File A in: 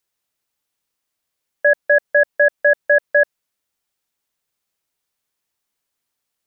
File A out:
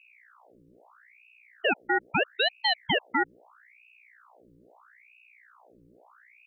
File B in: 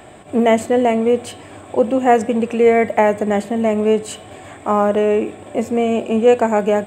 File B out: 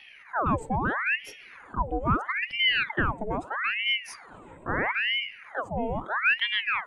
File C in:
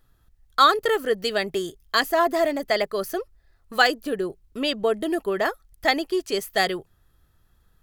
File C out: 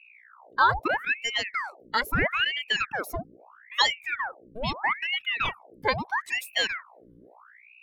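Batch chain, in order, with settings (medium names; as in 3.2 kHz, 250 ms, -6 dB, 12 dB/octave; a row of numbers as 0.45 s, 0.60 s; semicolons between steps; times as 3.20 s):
spectral contrast enhancement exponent 1.6; hum 60 Hz, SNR 25 dB; ring modulator with a swept carrier 1.4 kHz, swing 85%, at 0.77 Hz; normalise loudness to -27 LUFS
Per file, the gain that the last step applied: -8.5 dB, -9.0 dB, -1.5 dB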